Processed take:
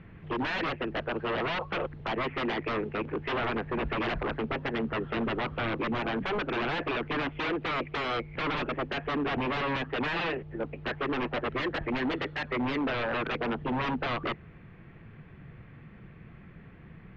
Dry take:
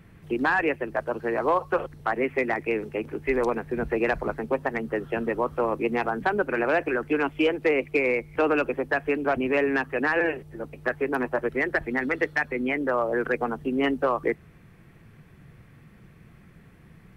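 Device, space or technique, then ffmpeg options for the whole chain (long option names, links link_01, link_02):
synthesiser wavefolder: -af "aeval=exprs='0.0473*(abs(mod(val(0)/0.0473+3,4)-2)-1)':channel_layout=same,lowpass=frequency=3200:width=0.5412,lowpass=frequency=3200:width=1.3066,volume=2dB"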